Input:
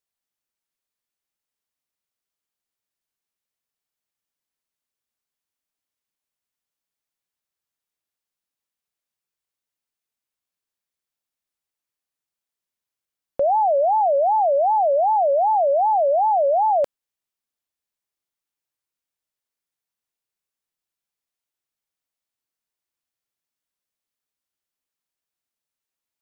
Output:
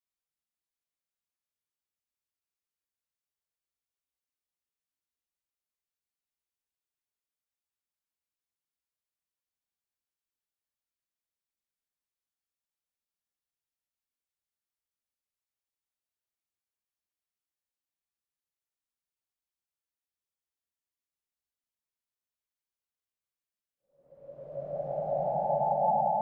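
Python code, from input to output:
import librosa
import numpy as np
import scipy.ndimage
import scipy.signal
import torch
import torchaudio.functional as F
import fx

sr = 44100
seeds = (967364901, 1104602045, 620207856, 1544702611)

y = fx.octave_divider(x, sr, octaves=2, level_db=0.0)
y = fx.paulstretch(y, sr, seeds[0], factor=5.5, window_s=0.5, from_s=8.81)
y = y * librosa.db_to_amplitude(-9.0)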